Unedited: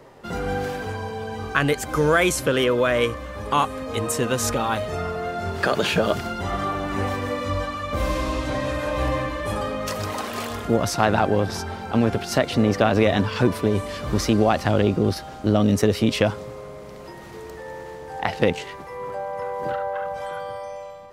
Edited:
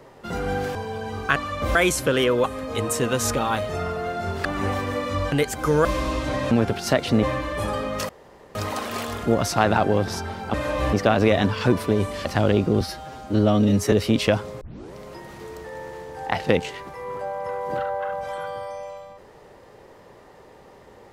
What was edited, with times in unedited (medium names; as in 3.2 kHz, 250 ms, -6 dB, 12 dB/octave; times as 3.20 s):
0.75–1.01 s: delete
1.62–2.15 s: swap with 7.67–8.06 s
2.84–3.63 s: delete
5.64–6.80 s: delete
8.72–9.11 s: swap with 11.96–12.68 s
9.97 s: insert room tone 0.46 s
14.00–14.55 s: delete
15.11–15.85 s: stretch 1.5×
16.54 s: tape start 0.34 s